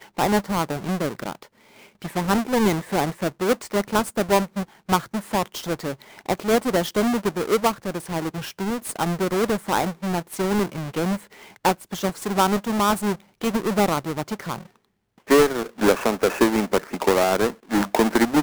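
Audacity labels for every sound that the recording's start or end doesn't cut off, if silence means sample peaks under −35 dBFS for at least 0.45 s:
2.020000	14.610000	sound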